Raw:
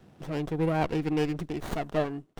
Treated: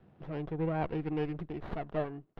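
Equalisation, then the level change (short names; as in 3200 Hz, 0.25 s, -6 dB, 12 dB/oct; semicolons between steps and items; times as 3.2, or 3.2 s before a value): air absorption 370 m; bell 270 Hz -4 dB 0.31 oct; -4.5 dB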